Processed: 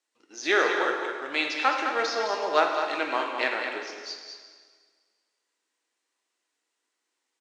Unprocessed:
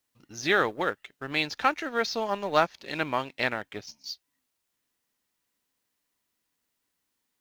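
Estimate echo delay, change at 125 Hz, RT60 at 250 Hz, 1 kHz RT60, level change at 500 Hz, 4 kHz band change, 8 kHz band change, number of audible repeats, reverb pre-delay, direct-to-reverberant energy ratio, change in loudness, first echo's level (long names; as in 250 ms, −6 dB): 210 ms, below −20 dB, 1.7 s, 1.7 s, +2.0 dB, +1.5 dB, +1.5 dB, 1, 5 ms, 0.5 dB, +1.5 dB, −8.0 dB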